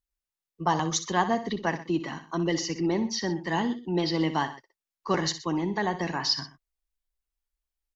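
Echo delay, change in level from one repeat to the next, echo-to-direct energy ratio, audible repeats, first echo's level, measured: 62 ms, -5.5 dB, -11.0 dB, 2, -12.0 dB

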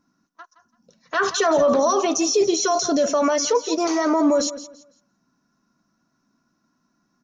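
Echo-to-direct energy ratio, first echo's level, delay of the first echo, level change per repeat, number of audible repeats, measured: -13.5 dB, -14.0 dB, 168 ms, -11.5 dB, 2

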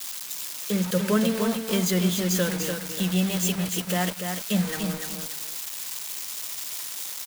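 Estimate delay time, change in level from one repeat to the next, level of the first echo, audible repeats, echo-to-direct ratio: 293 ms, -11.5 dB, -6.0 dB, 2, -5.5 dB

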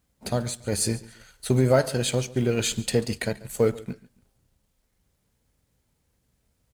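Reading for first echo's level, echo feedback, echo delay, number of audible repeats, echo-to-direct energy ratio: -20.0 dB, 29%, 140 ms, 2, -19.5 dB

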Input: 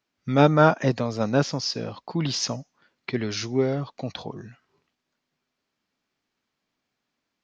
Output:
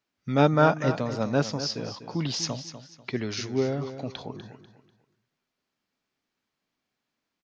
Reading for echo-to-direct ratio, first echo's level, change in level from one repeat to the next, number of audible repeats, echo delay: -11.0 dB, -11.5 dB, -10.5 dB, 3, 246 ms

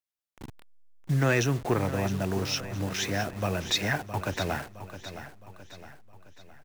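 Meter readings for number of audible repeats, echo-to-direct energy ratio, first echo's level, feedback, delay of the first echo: 4, -11.0 dB, -12.0 dB, 46%, 664 ms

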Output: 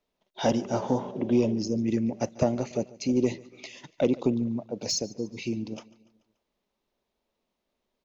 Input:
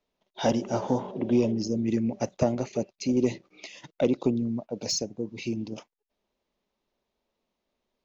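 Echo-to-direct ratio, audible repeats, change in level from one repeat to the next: -20.0 dB, 3, -5.5 dB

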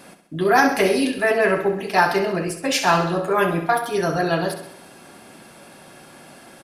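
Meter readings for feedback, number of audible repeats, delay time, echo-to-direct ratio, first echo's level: 55%, 5, 66 ms, -8.0 dB, -9.5 dB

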